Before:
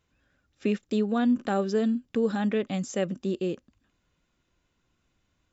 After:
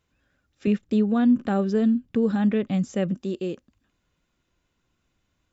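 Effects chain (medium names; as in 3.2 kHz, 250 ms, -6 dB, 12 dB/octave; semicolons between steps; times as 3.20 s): 0.67–3.16 s: tone controls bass +9 dB, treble -6 dB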